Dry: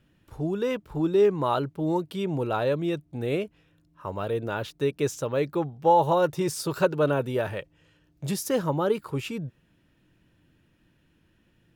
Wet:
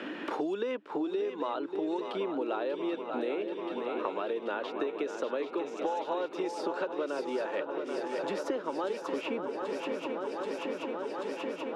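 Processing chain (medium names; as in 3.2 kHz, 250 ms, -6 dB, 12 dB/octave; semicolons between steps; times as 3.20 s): low-pass 3.7 kHz 12 dB/octave; compression, threshold -32 dBFS, peak gain reduction 16 dB; steep high-pass 260 Hz 36 dB/octave; shuffle delay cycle 783 ms, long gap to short 3:1, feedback 68%, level -10 dB; three bands compressed up and down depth 100%; trim +2 dB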